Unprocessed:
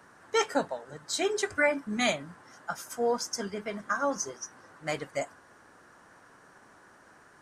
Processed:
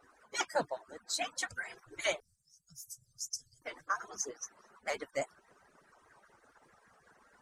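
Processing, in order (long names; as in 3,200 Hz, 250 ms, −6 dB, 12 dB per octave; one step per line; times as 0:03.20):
harmonic-percussive split with one part muted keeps percussive
0:02.20–0:03.62: elliptic band-stop filter 130–5,700 Hz, stop band 40 dB
pitch modulation by a square or saw wave saw up 4.9 Hz, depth 100 cents
level −3 dB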